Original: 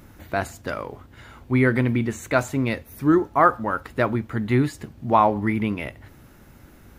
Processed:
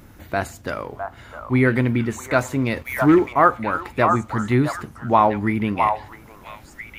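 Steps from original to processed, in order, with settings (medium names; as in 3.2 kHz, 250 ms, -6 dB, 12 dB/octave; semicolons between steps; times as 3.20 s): repeats whose band climbs or falls 658 ms, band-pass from 950 Hz, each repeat 1.4 oct, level -3 dB; 2.76–3.33 s: waveshaping leveller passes 1; trim +1.5 dB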